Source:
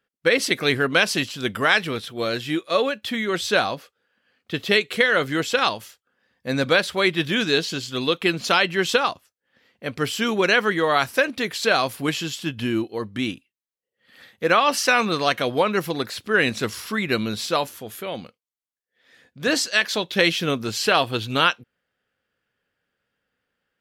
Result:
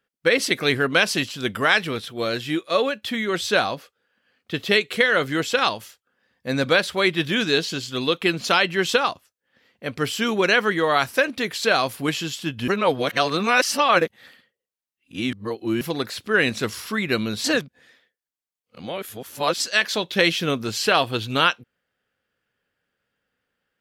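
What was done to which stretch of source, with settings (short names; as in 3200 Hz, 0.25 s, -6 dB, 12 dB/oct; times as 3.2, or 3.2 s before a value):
12.68–15.81 reverse
17.44–19.6 reverse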